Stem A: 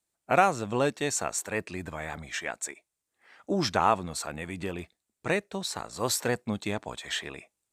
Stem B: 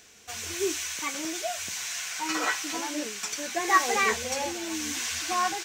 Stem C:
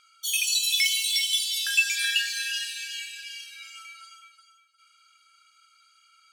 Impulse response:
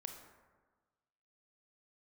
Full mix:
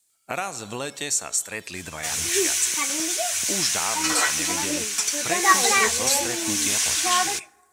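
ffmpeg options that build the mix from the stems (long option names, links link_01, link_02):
-filter_complex "[0:a]highshelf=frequency=2100:gain=10.5,volume=-0.5dB,asplit=2[link_01][link_02];[link_02]volume=-15.5dB[link_03];[1:a]equalizer=frequency=10000:width=2.5:gain=9,adelay=1750,volume=2dB,asplit=2[link_04][link_05];[link_05]volume=-14dB[link_06];[2:a]acompressor=threshold=-28dB:ratio=6,adelay=100,volume=-19.5dB[link_07];[link_01][link_07]amix=inputs=2:normalize=0,acompressor=threshold=-31dB:ratio=4,volume=0dB[link_08];[3:a]atrim=start_sample=2205[link_09];[link_03][link_06]amix=inputs=2:normalize=0[link_10];[link_10][link_09]afir=irnorm=-1:irlink=0[link_11];[link_04][link_08][link_11]amix=inputs=3:normalize=0,equalizer=frequency=8900:width=0.37:gain=6.5"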